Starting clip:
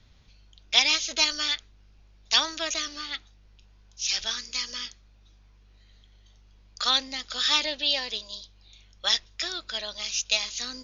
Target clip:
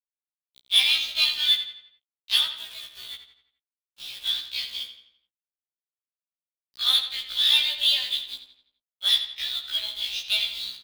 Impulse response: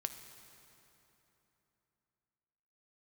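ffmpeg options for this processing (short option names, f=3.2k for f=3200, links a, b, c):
-filter_complex "[0:a]acrossover=split=6300[a][b];[b]acompressor=threshold=-40dB:ratio=4:attack=1:release=60[c];[a][c]amix=inputs=2:normalize=0,afwtdn=0.0141,firequalizer=gain_entry='entry(170,0);entry(260,-28);entry(620,-11);entry(3500,11);entry(5600,-9)':delay=0.05:min_phase=1,acrusher=bits=4:mode=log:mix=0:aa=0.000001,asplit=3[d][e][f];[d]afade=t=out:st=2.46:d=0.02[g];[e]acompressor=threshold=-35dB:ratio=5,afade=t=in:st=2.46:d=0.02,afade=t=out:st=4.24:d=0.02[h];[f]afade=t=in:st=4.24:d=0.02[i];[g][h][i]amix=inputs=3:normalize=0,asoftclip=type=tanh:threshold=-8.5dB,lowshelf=f=290:g=-4,acrusher=bits=6:mix=0:aa=0.000001,asplit=2[j][k];[k]adelay=85,lowpass=f=4.9k:p=1,volume=-9dB,asplit=2[l][m];[m]adelay=85,lowpass=f=4.9k:p=1,volume=0.48,asplit=2[n][o];[o]adelay=85,lowpass=f=4.9k:p=1,volume=0.48,asplit=2[p][q];[q]adelay=85,lowpass=f=4.9k:p=1,volume=0.48,asplit=2[r][s];[s]adelay=85,lowpass=f=4.9k:p=1,volume=0.48[t];[l][n][p][r][t]amix=inputs=5:normalize=0[u];[j][u]amix=inputs=2:normalize=0,afftfilt=real='re*1.73*eq(mod(b,3),0)':imag='im*1.73*eq(mod(b,3),0)':win_size=2048:overlap=0.75"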